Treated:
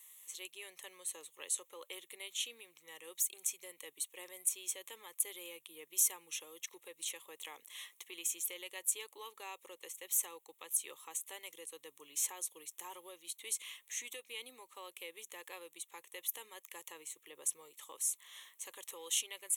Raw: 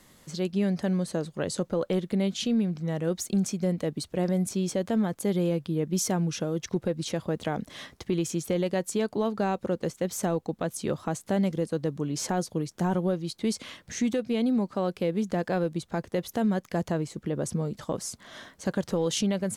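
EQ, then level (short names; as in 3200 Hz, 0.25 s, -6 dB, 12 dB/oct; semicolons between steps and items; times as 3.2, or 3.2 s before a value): HPF 720 Hz 6 dB/oct; differentiator; fixed phaser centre 1000 Hz, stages 8; +6.0 dB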